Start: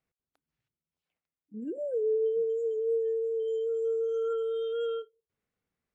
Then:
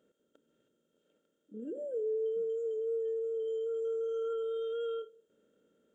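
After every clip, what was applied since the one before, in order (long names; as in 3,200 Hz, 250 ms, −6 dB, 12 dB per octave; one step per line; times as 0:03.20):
compressor on every frequency bin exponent 0.6
level −6.5 dB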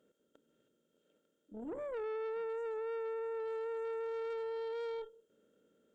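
tube saturation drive 39 dB, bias 0.55
level +2 dB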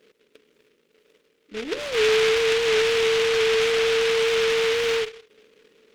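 hollow resonant body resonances 430/2,900 Hz, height 13 dB
short delay modulated by noise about 2,300 Hz, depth 0.18 ms
level +7.5 dB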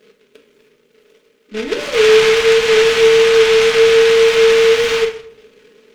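convolution reverb RT60 0.65 s, pre-delay 5 ms, DRR 2 dB
level +6 dB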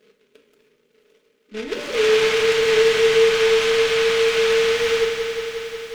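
feedback echo at a low word length 180 ms, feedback 80%, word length 7 bits, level −7 dB
level −7 dB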